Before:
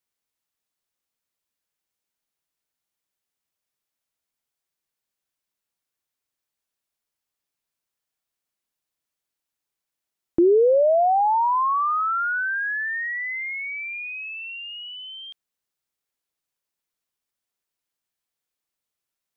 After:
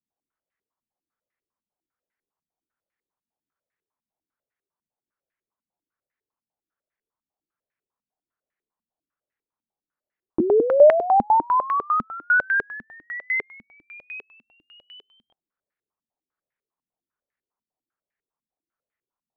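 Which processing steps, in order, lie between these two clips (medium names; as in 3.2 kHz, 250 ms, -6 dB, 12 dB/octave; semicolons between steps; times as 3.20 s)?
step-sequenced low-pass 10 Hz 230–1900 Hz; trim -3 dB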